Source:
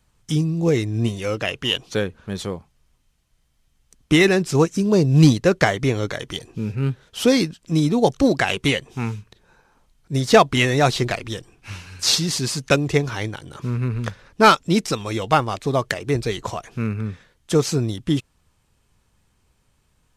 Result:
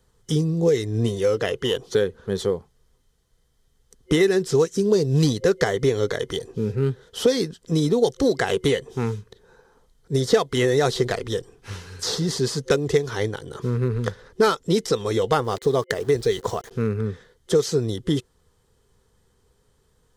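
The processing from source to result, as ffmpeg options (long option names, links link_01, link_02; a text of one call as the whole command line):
ffmpeg -i in.wav -filter_complex "[0:a]asettb=1/sr,asplit=3[link_01][link_02][link_03];[link_01]atrim=end=15.444[link_04];[link_02]atrim=start=15.44:end=16.71,asetpts=PTS-STARTPTS,afade=type=in:duration=0.004:curve=qsin,afade=type=out:start_time=1.266:duration=0.004:curve=qsin,aeval=exprs='val(0)*gte(abs(val(0)),0.00891)':channel_layout=same[link_05];[link_03]atrim=start=16.706[link_06];[link_04][link_05]acrossfade=duration=0.004:curve1=hsin:curve2=qsin[link_07];[link_07][link_06]acrossfade=duration=0.004:curve1=qsin:curve2=hsin,superequalizer=7b=3.16:12b=0.398,acrossover=split=1700|6600[link_08][link_09][link_10];[link_08]acompressor=threshold=-17dB:ratio=4[link_11];[link_09]acompressor=threshold=-29dB:ratio=4[link_12];[link_10]acompressor=threshold=-39dB:ratio=4[link_13];[link_11][link_12][link_13]amix=inputs=3:normalize=0" out.wav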